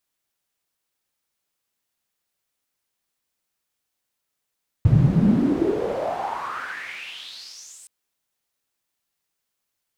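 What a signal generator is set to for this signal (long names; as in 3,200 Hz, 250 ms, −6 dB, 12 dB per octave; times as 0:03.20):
filter sweep on noise pink, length 3.02 s bandpass, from 110 Hz, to 8,600 Hz, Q 6.1, exponential, gain ramp −31 dB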